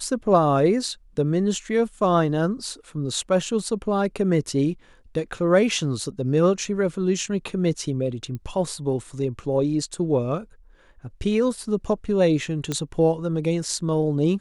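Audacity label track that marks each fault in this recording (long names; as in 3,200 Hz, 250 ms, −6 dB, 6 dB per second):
8.350000	8.350000	click −22 dBFS
12.720000	12.720000	click −12 dBFS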